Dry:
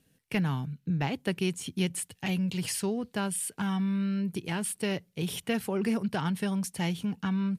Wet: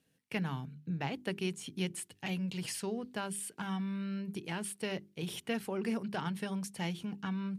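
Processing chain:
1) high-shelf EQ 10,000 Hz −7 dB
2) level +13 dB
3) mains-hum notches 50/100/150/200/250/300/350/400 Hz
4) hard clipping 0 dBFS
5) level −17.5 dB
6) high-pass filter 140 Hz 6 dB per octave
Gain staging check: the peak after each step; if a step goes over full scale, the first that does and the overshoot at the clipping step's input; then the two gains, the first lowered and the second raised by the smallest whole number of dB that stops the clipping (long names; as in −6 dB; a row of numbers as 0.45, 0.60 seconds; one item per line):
−16.0, −3.0, −2.5, −2.5, −20.0, −20.0 dBFS
no step passes full scale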